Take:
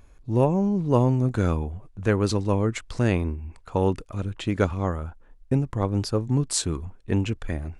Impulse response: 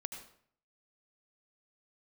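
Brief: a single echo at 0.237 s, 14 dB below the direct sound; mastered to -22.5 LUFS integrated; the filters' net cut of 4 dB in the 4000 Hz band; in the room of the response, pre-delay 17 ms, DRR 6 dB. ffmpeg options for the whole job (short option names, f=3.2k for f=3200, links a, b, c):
-filter_complex "[0:a]equalizer=f=4k:t=o:g=-5,aecho=1:1:237:0.2,asplit=2[a][b];[1:a]atrim=start_sample=2205,adelay=17[c];[b][c]afir=irnorm=-1:irlink=0,volume=-4.5dB[d];[a][d]amix=inputs=2:normalize=0,volume=2dB"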